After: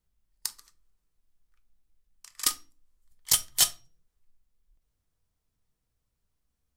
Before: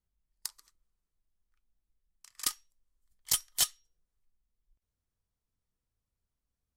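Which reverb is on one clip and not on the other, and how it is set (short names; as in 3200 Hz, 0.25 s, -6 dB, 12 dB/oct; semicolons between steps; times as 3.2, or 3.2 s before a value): shoebox room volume 180 m³, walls furnished, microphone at 0.48 m; gain +5.5 dB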